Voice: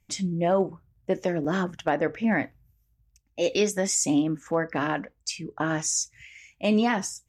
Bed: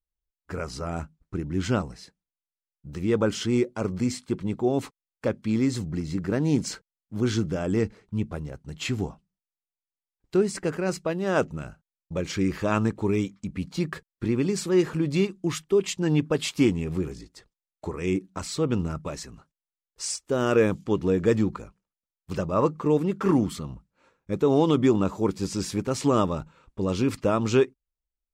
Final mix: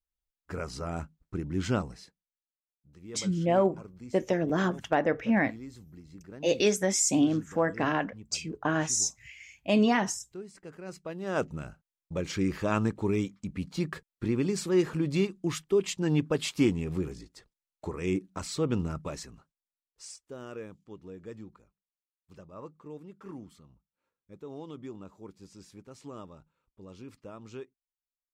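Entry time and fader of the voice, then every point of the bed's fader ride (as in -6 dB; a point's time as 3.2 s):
3.05 s, -1.0 dB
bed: 1.98 s -3.5 dB
2.55 s -20 dB
10.58 s -20 dB
11.53 s -3.5 dB
19.17 s -3.5 dB
20.68 s -22 dB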